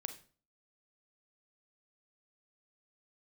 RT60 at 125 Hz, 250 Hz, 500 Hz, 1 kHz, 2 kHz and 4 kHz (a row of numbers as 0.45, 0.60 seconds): 0.50, 0.50, 0.45, 0.40, 0.35, 0.35 seconds